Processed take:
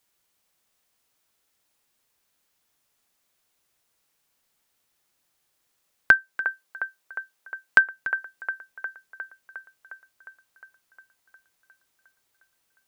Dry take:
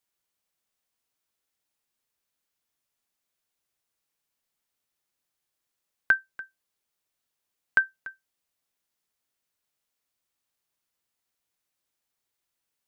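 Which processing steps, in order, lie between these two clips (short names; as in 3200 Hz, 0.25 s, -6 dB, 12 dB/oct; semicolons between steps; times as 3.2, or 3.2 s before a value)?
6.13–7.96 HPF 230 Hz 6 dB/oct; in parallel at -0.5 dB: compressor, threshold -31 dBFS, peak gain reduction 14 dB; on the sum: band-limited delay 0.357 s, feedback 69%, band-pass 860 Hz, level -9.5 dB; gain +4 dB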